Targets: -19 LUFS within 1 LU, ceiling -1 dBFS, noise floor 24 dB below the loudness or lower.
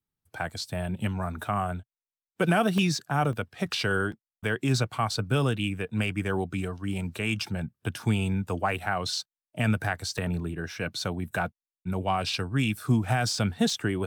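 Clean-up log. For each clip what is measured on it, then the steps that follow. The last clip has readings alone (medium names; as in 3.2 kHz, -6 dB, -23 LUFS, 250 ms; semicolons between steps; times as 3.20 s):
dropouts 8; longest dropout 1.8 ms; loudness -28.5 LUFS; peak level -11.5 dBFS; loudness target -19.0 LUFS
-> interpolate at 0.38/1.47/2.78/3.33/4.12/9.08/10.18/13.70 s, 1.8 ms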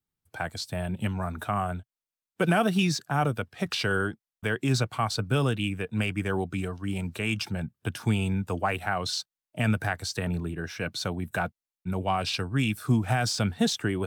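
dropouts 0; loudness -28.5 LUFS; peak level -11.5 dBFS; loudness target -19.0 LUFS
-> trim +9.5 dB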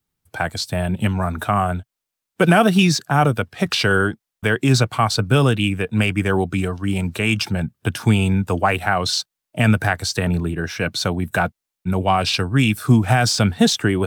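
loudness -19.0 LUFS; peak level -2.0 dBFS; noise floor -83 dBFS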